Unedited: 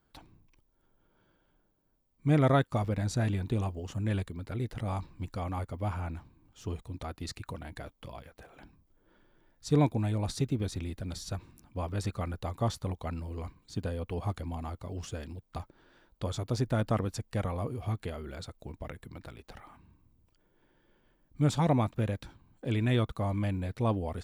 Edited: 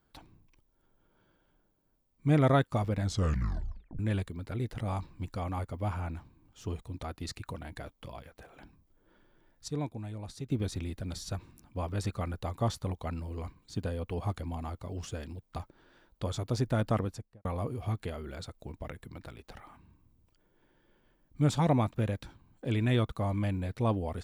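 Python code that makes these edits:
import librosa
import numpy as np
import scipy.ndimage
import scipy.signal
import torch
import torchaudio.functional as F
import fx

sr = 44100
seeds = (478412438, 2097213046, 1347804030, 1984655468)

y = fx.studio_fade_out(x, sr, start_s=16.96, length_s=0.49)
y = fx.edit(y, sr, fx.tape_stop(start_s=3.01, length_s=0.98),
    fx.clip_gain(start_s=9.68, length_s=0.82, db=-10.0), tone=tone)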